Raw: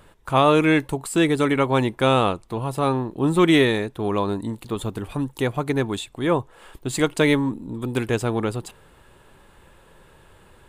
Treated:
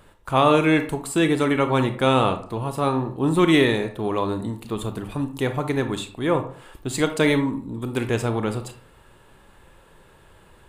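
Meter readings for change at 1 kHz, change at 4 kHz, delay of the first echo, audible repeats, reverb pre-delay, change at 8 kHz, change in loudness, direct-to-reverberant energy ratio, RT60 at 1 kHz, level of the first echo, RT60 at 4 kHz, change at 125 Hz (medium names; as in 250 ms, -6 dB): 0.0 dB, -0.5 dB, no echo, no echo, 25 ms, -0.5 dB, -0.5 dB, 7.5 dB, 0.45 s, no echo, 0.30 s, -0.5 dB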